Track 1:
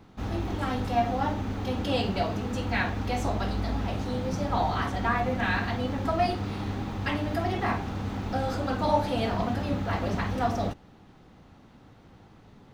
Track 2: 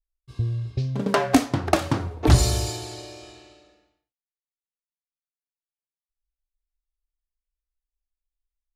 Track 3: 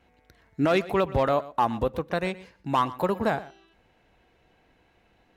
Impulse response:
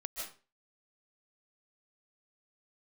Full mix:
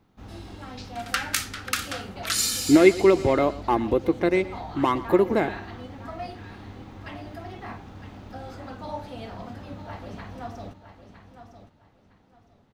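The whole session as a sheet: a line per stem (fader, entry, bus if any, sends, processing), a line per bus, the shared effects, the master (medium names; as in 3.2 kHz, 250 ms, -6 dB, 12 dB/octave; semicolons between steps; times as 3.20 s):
-10.5 dB, 0.00 s, no send, echo send -10.5 dB, none
+1.5 dB, 0.00 s, no send, no echo send, elliptic high-pass 1.3 kHz; treble shelf 11 kHz +10.5 dB
-1.5 dB, 2.10 s, no send, no echo send, small resonant body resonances 340/2100 Hz, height 17 dB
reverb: none
echo: feedback delay 959 ms, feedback 24%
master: none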